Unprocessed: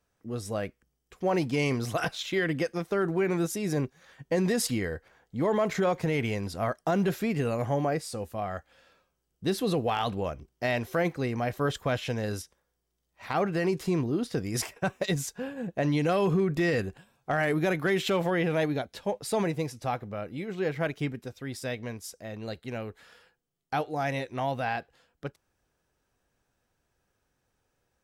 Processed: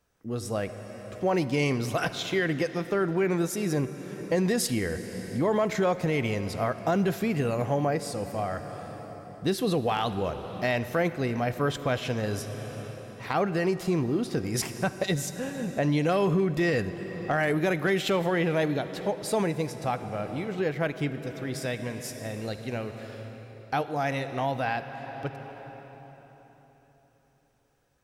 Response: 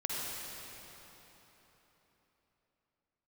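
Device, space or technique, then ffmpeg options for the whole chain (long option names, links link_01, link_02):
ducked reverb: -filter_complex "[0:a]asplit=3[link_01][link_02][link_03];[1:a]atrim=start_sample=2205[link_04];[link_02][link_04]afir=irnorm=-1:irlink=0[link_05];[link_03]apad=whole_len=1236352[link_06];[link_05][link_06]sidechaincompress=threshold=-34dB:ratio=8:attack=43:release=793,volume=-6dB[link_07];[link_01][link_07]amix=inputs=2:normalize=0"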